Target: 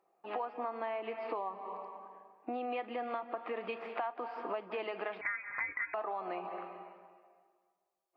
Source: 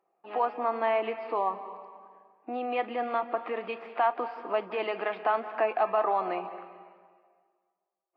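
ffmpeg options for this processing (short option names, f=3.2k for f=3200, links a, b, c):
-filter_complex "[0:a]asettb=1/sr,asplit=3[a][b][c];[a]atrim=end=5.214[d];[b]atrim=start=5.21:end=5.94,asetpts=PTS-STARTPTS,afade=t=in:d=0.004:c=qsin,afade=t=out:st=0.726:d=0.004:c=qsin,lowpass=f=2.3k:t=q:w=0.5098,lowpass=f=2.3k:t=q:w=0.6013,lowpass=f=2.3k:t=q:w=0.9,lowpass=f=2.3k:t=q:w=2.563,afreqshift=-2700[e];[c]atrim=start=5.936[f];[d][e]acrossfade=d=0.004:c1=hsin:c2=qsin[g];[g][f]acrossfade=d=0.004:c1=qsin:c2=hsin,acompressor=threshold=-36dB:ratio=6,volume=1dB"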